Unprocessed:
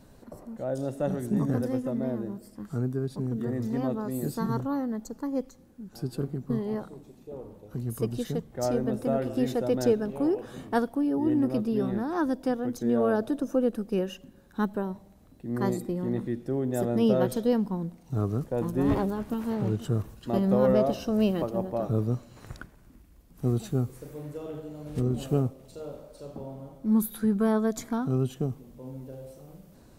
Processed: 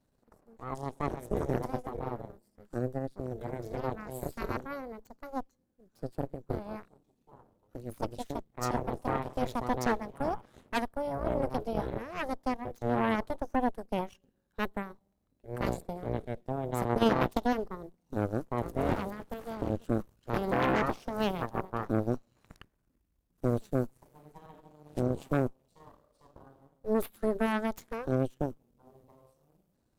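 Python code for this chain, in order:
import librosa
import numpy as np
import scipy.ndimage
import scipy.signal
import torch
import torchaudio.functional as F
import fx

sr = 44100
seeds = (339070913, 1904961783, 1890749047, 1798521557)

y = fx.cheby_harmonics(x, sr, harmonics=(6, 7), levels_db=(-7, -15), full_scale_db=-10.5)
y = fx.transient(y, sr, attack_db=12, sustain_db=-8, at=(16.89, 17.42))
y = y * 10.0 ** (-8.5 / 20.0)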